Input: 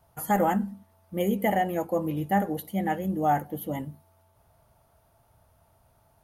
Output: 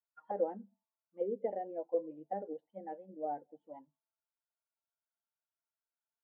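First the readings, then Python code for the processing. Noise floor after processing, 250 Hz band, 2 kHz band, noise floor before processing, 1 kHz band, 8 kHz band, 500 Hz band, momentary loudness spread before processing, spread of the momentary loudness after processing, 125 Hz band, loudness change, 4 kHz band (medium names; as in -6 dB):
under -85 dBFS, -19.5 dB, -28.5 dB, -65 dBFS, -16.0 dB, under -35 dB, -7.5 dB, 10 LU, 17 LU, -28.0 dB, -12.0 dB, under -35 dB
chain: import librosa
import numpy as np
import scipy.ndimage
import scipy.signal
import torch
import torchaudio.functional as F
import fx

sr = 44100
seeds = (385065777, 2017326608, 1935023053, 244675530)

y = fx.bin_expand(x, sr, power=1.5)
y = fx.auto_wah(y, sr, base_hz=470.0, top_hz=1500.0, q=4.3, full_db=-25.0, direction='down')
y = fx.cabinet(y, sr, low_hz=220.0, low_slope=12, high_hz=2600.0, hz=(250.0, 1200.0, 2400.0), db=(5, -10, -6))
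y = y * 10.0 ** (-1.0 / 20.0)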